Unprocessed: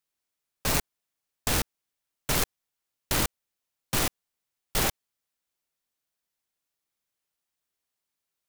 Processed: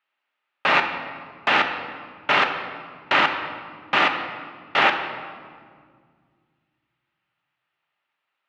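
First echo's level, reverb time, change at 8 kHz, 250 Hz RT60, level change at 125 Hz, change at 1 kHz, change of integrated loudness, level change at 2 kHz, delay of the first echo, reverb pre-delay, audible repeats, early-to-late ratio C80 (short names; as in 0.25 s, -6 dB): none, 1.9 s, under -15 dB, 2.9 s, -8.0 dB, +14.5 dB, +6.5 dB, +14.5 dB, none, 3 ms, none, 8.5 dB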